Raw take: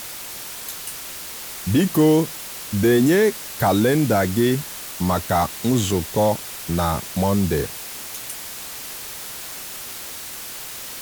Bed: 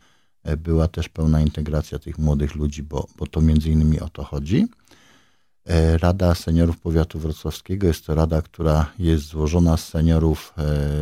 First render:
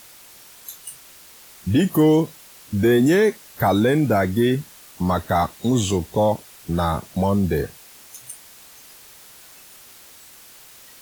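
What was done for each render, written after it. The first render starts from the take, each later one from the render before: noise print and reduce 12 dB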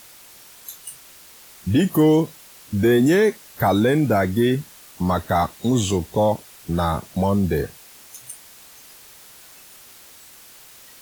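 no audible change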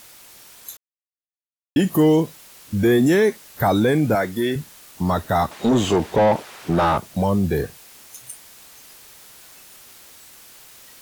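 0.77–1.76 s: mute; 4.15–4.56 s: high-pass 360 Hz 6 dB/octave; 5.51–6.98 s: overdrive pedal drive 23 dB, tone 1.1 kHz, clips at -8 dBFS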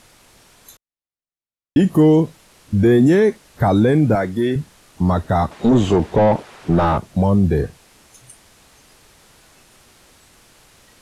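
low-pass 12 kHz 24 dB/octave; tilt EQ -2 dB/octave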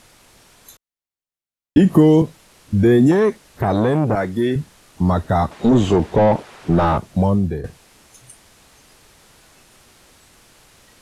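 1.77–2.22 s: three bands compressed up and down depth 100%; 3.11–4.34 s: transformer saturation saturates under 500 Hz; 7.24–7.64 s: fade out, to -12.5 dB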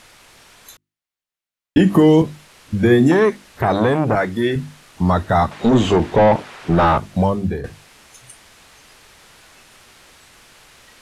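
peaking EQ 2.1 kHz +6 dB 2.7 oct; hum notches 50/100/150/200/250/300/350 Hz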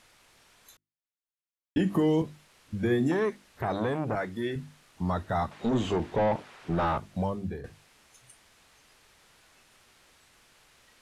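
trim -13 dB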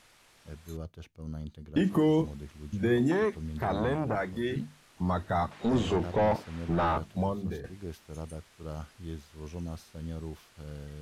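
add bed -21.5 dB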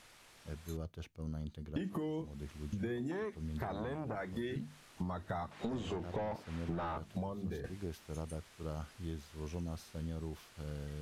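compression 16:1, threshold -35 dBFS, peak gain reduction 15 dB

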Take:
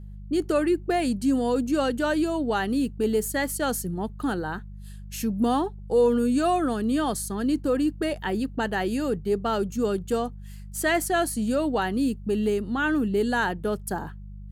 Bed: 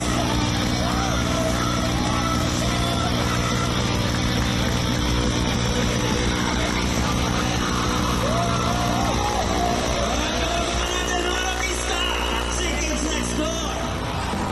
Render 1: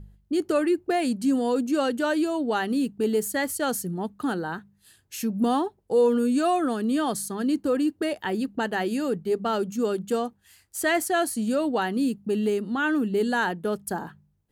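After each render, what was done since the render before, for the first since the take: de-hum 50 Hz, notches 4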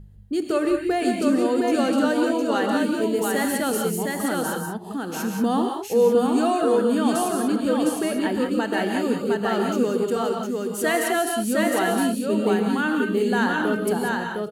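on a send: delay 709 ms -3 dB; on the sum: gated-style reverb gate 210 ms rising, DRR 3 dB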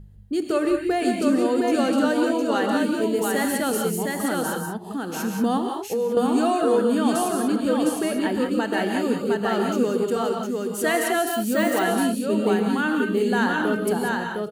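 5.57–6.17 s: compression 10:1, threshold -20 dBFS; 11.27–11.83 s: careless resampling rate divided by 2×, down filtered, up hold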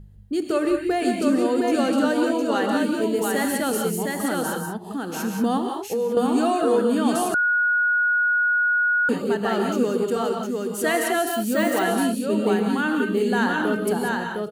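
7.34–9.09 s: bleep 1.45 kHz -17 dBFS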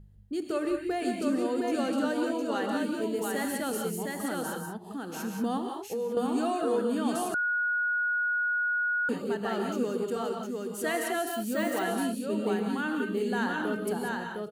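trim -8 dB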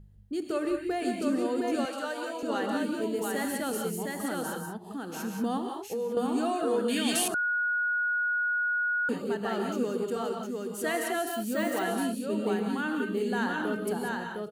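1.85–2.43 s: high-pass 590 Hz; 6.88–7.28 s: resonant high shelf 1.6 kHz +10.5 dB, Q 3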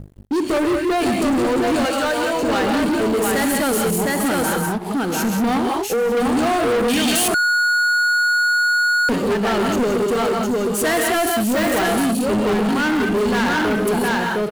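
waveshaping leveller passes 5

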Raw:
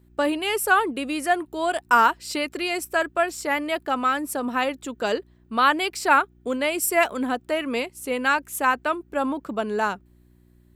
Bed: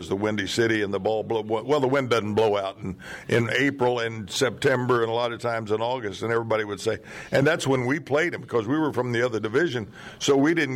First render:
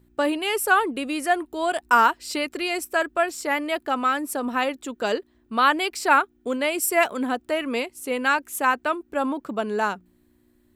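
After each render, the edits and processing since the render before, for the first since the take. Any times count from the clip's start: de-hum 60 Hz, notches 3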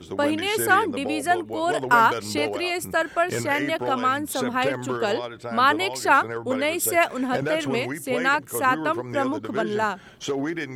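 add bed -7 dB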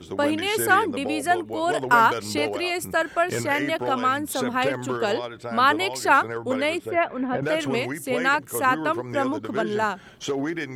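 6.78–7.43 s: distance through air 470 m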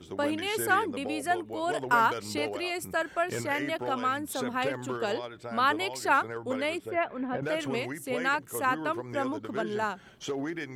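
trim -6.5 dB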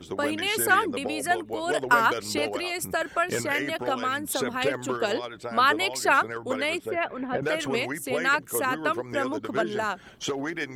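harmonic-percussive split percussive +8 dB; dynamic bell 890 Hz, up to -4 dB, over -37 dBFS, Q 3.7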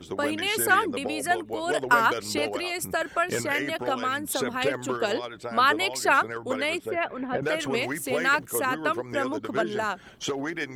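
7.82–8.46 s: companding laws mixed up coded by mu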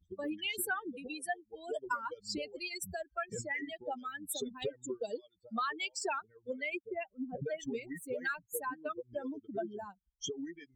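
expander on every frequency bin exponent 3; compression 4:1, threshold -34 dBFS, peak gain reduction 13.5 dB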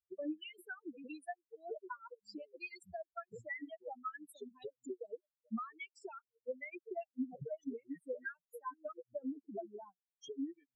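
compression 12:1, threshold -40 dBFS, peak gain reduction 11.5 dB; spectral contrast expander 2.5:1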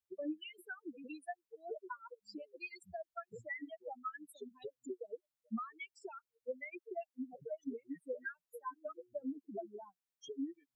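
6.79–7.50 s: high-pass 310 Hz; 8.59–9.38 s: hum notches 60/120/180/240/300/360/420 Hz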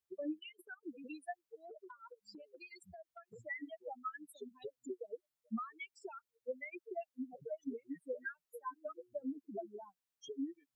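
0.39–0.83 s: transient shaper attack -6 dB, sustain -11 dB; 1.58–3.45 s: compression, threshold -50 dBFS

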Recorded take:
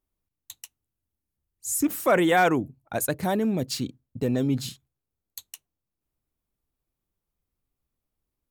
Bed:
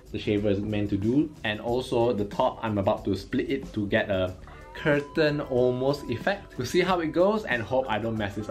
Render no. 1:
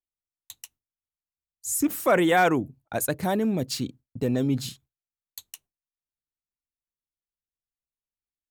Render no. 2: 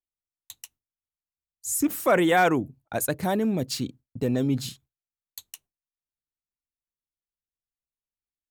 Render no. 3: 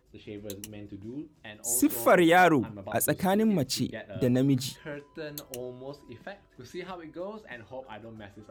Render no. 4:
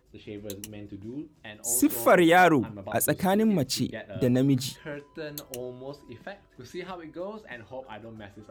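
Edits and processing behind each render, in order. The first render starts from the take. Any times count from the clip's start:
gate with hold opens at -46 dBFS
no audible change
add bed -16 dB
trim +1.5 dB

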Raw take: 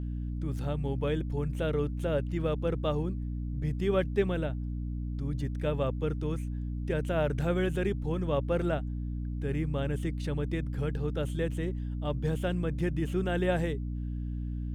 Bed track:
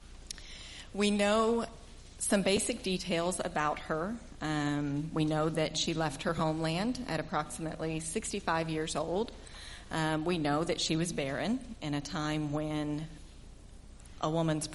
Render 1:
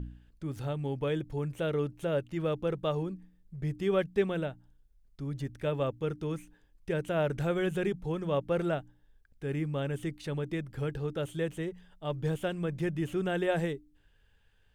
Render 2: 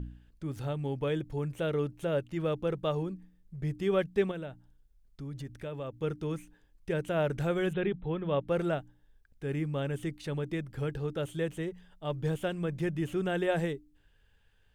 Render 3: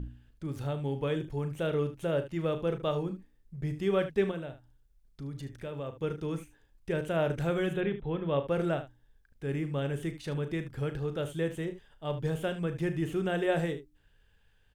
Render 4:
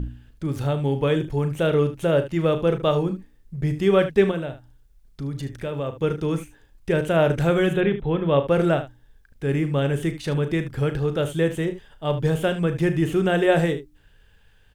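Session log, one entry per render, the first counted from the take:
de-hum 60 Hz, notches 5
4.31–6.01 s: compression 2.5:1, threshold -38 dBFS; 7.73–8.48 s: brick-wall FIR low-pass 4.1 kHz
early reflections 36 ms -11 dB, 75 ms -13 dB
trim +10 dB

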